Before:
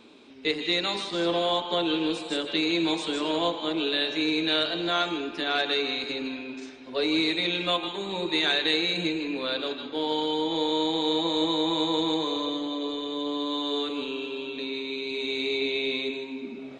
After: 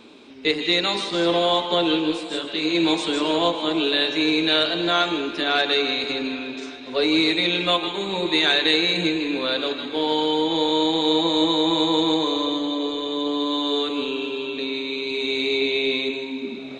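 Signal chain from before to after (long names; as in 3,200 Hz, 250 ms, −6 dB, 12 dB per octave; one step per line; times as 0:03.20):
on a send: feedback echo with a high-pass in the loop 286 ms, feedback 76%, high-pass 180 Hz, level −18 dB
0:02.00–0:02.74: on the sum: micro pitch shift up and down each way 33 cents → 48 cents
level +5.5 dB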